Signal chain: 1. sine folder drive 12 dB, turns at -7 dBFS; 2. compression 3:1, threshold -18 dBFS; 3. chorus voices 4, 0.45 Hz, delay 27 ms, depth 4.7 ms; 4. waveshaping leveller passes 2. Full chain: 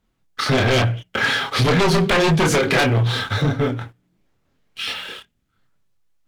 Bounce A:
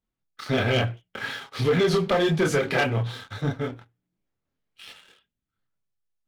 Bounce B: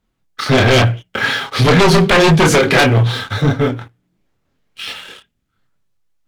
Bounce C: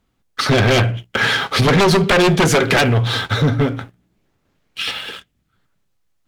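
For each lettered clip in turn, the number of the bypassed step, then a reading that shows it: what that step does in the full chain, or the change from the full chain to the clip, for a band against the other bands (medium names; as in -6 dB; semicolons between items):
1, distortion -1 dB; 2, loudness change +6.0 LU; 3, loudness change +3.0 LU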